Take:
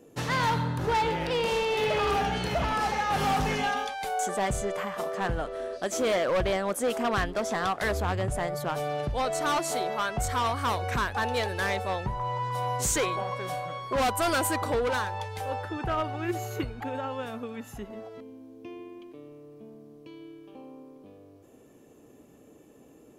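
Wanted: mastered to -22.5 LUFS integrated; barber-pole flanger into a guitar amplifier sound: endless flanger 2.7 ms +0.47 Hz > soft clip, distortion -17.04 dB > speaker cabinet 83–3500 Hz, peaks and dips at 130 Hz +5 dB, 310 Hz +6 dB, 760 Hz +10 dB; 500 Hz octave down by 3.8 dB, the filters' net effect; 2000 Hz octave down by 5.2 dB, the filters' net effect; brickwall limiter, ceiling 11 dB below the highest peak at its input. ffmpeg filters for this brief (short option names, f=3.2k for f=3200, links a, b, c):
-filter_complex "[0:a]equalizer=f=500:t=o:g=-8,equalizer=f=2k:t=o:g=-6.5,alimiter=level_in=7.5dB:limit=-24dB:level=0:latency=1,volume=-7.5dB,asplit=2[a][b];[b]adelay=2.7,afreqshift=0.47[c];[a][c]amix=inputs=2:normalize=1,asoftclip=threshold=-36.5dB,highpass=83,equalizer=f=130:t=q:w=4:g=5,equalizer=f=310:t=q:w=4:g=6,equalizer=f=760:t=q:w=4:g=10,lowpass=f=3.5k:w=0.5412,lowpass=f=3.5k:w=1.3066,volume=18.5dB"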